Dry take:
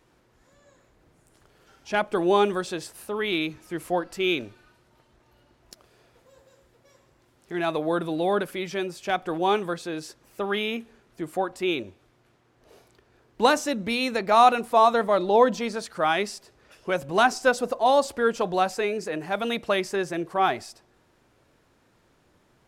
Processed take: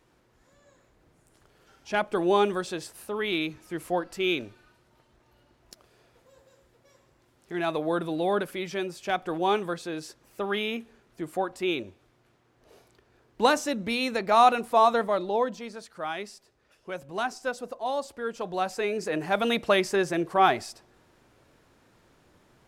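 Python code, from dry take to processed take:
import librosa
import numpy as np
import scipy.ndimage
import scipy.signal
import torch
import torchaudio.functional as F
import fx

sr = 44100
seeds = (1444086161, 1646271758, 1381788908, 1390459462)

y = fx.gain(x, sr, db=fx.line((14.96, -2.0), (15.56, -10.0), (18.24, -10.0), (19.18, 2.0)))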